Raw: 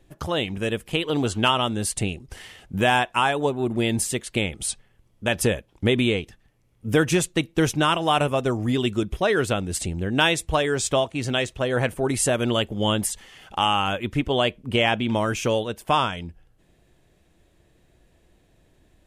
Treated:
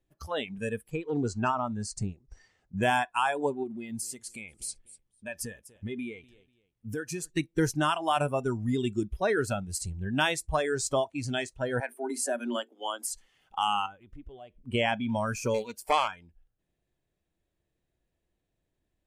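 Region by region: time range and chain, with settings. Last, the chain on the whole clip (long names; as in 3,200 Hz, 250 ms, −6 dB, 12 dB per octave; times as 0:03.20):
0:00.90–0:02.83: de-essing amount 25% + low-pass filter 7,400 Hz 24 dB per octave + parametric band 3,100 Hz −11 dB 0.63 octaves
0:03.63–0:07.30: repeating echo 245 ms, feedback 29%, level −18.5 dB + downward compressor 2 to 1, threshold −29 dBFS
0:11.80–0:13.08: Chebyshev high-pass with heavy ripple 230 Hz, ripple 3 dB + mains-hum notches 50/100/150/200/250/300/350/400/450 Hz
0:13.86–0:14.63: spectral tilt −1.5 dB per octave + downward compressor 3 to 1, threshold −33 dBFS + one half of a high-frequency compander decoder only
0:15.54–0:16.08: high-shelf EQ 2,800 Hz +7 dB + highs frequency-modulated by the lows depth 0.37 ms
whole clip: noise reduction from a noise print of the clip's start 16 dB; dynamic equaliser 3,100 Hz, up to −4 dB, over −37 dBFS, Q 1.5; level −5 dB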